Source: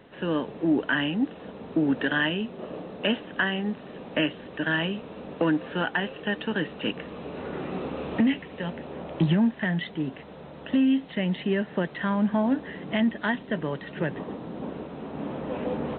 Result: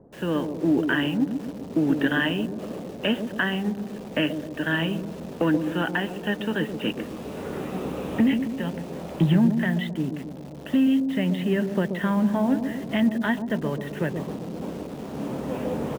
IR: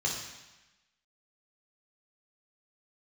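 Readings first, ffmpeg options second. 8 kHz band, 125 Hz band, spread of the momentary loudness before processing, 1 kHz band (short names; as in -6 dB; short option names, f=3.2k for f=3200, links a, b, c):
n/a, +3.5 dB, 12 LU, +0.5 dB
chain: -filter_complex "[0:a]lowshelf=f=200:g=4.5,acrossover=split=880[a][b];[a]aecho=1:1:131|262|393|524|655|786|917:0.473|0.26|0.143|0.0787|0.0433|0.0238|0.0131[c];[b]acrusher=bits=7:mix=0:aa=0.000001[d];[c][d]amix=inputs=2:normalize=0"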